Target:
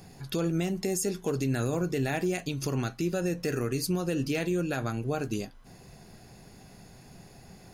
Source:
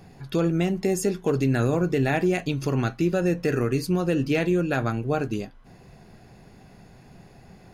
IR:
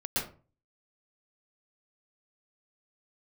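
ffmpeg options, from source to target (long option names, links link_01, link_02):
-af "bass=frequency=250:gain=0,treble=frequency=4000:gain=10,alimiter=limit=-18dB:level=0:latency=1:release=255,volume=-2dB"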